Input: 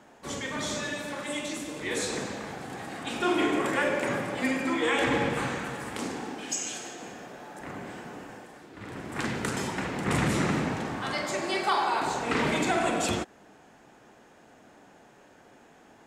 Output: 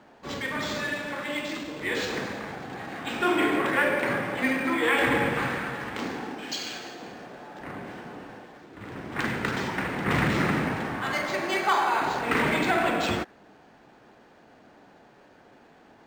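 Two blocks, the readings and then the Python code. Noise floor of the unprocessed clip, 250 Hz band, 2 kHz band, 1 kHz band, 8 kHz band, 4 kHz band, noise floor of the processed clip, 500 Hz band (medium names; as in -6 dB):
-56 dBFS, +1.0 dB, +4.5 dB, +2.5 dB, -7.0 dB, +1.0 dB, -55 dBFS, +1.5 dB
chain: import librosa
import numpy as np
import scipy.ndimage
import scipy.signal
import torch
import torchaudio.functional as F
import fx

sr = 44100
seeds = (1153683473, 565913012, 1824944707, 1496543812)

y = fx.dynamic_eq(x, sr, hz=1800.0, q=1.1, threshold_db=-44.0, ratio=4.0, max_db=5)
y = np.interp(np.arange(len(y)), np.arange(len(y))[::4], y[::4])
y = F.gain(torch.from_numpy(y), 1.0).numpy()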